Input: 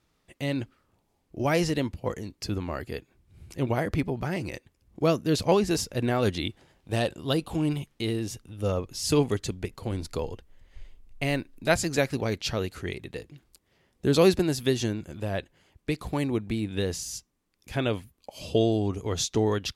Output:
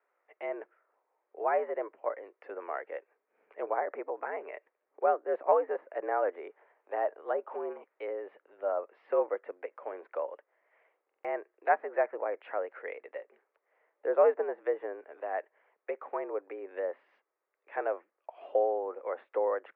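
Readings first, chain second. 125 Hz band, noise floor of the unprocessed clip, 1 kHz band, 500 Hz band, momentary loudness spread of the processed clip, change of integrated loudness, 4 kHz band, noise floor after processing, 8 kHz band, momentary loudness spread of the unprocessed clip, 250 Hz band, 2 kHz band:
below −40 dB, −72 dBFS, +1.5 dB, −2.5 dB, 15 LU, −5.5 dB, below −30 dB, −83 dBFS, below −40 dB, 12 LU, −20.5 dB, −7.0 dB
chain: treble cut that deepens with the level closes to 1,400 Hz, closed at −24 dBFS
single-sideband voice off tune +83 Hz 390–2,000 Hz
buffer that repeats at 0:11.06, samples 2,048, times 3
level −1 dB

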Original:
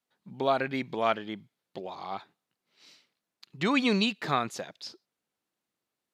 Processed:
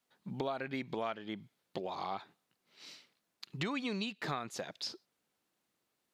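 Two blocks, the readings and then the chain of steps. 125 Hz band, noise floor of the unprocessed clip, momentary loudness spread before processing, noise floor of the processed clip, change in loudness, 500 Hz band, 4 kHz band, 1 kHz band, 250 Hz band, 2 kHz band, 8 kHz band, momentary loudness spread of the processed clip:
−6.0 dB, below −85 dBFS, 17 LU, −83 dBFS, −10.5 dB, −9.0 dB, −8.0 dB, −9.0 dB, −9.5 dB, −9.5 dB, −4.0 dB, 16 LU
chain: downward compressor 6 to 1, threshold −39 dBFS, peak gain reduction 17.5 dB
level +4 dB

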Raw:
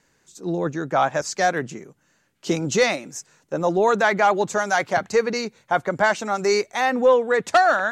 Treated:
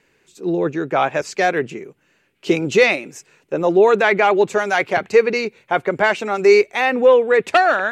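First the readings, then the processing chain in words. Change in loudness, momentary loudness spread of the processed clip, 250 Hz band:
+4.5 dB, 10 LU, +4.0 dB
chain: graphic EQ with 15 bands 400 Hz +9 dB, 2,500 Hz +11 dB, 6,300 Hz −6 dB

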